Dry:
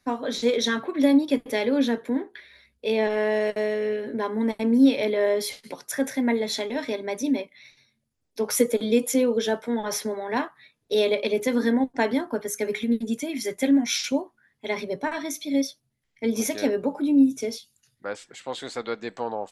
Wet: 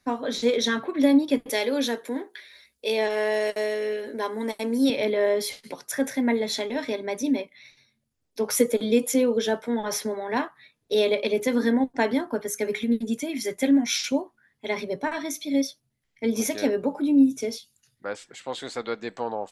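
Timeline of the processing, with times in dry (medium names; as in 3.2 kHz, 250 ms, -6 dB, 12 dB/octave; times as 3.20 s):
1.49–4.90 s: tone controls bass -12 dB, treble +10 dB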